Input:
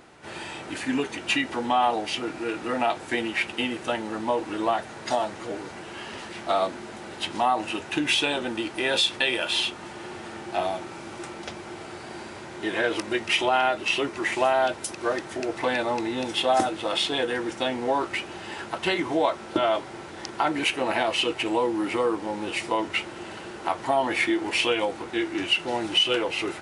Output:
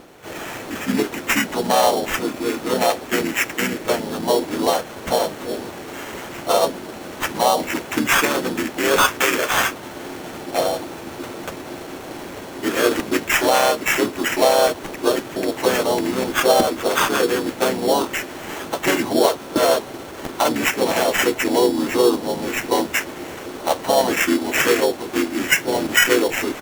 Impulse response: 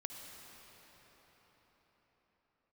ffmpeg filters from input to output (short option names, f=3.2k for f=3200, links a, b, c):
-filter_complex "[0:a]equalizer=f=500:t=o:w=1:g=6,equalizer=f=4k:t=o:w=1:g=7,equalizer=f=8k:t=o:w=1:g=-8,acrusher=samples=9:mix=1:aa=0.000001,asplit=3[a][b][c];[b]asetrate=33038,aresample=44100,atempo=1.33484,volume=-3dB[d];[c]asetrate=37084,aresample=44100,atempo=1.18921,volume=-7dB[e];[a][d][e]amix=inputs=3:normalize=0,volume=1dB"